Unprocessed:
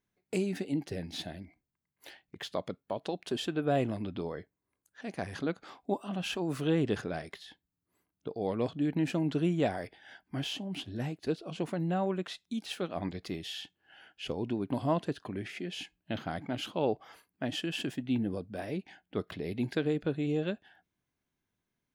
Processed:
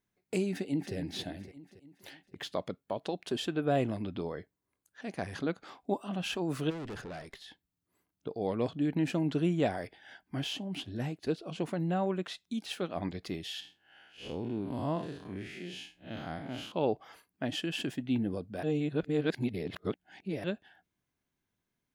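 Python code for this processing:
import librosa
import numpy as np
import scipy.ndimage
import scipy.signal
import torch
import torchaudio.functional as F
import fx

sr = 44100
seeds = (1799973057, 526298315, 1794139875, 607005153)

y = fx.echo_throw(x, sr, start_s=0.51, length_s=0.44, ms=280, feedback_pct=55, wet_db=-9.0)
y = fx.tube_stage(y, sr, drive_db=38.0, bias=0.4, at=(6.69, 7.42), fade=0.02)
y = fx.spec_blur(y, sr, span_ms=123.0, at=(13.6, 16.72))
y = fx.edit(y, sr, fx.reverse_span(start_s=18.63, length_s=1.81), tone=tone)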